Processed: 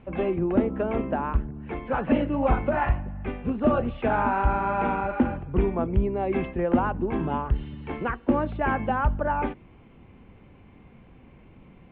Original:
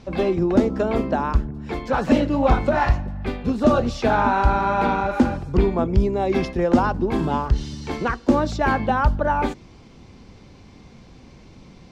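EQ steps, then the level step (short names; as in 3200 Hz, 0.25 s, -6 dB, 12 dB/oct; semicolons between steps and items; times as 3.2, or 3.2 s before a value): steep low-pass 3000 Hz 48 dB/oct; -5.0 dB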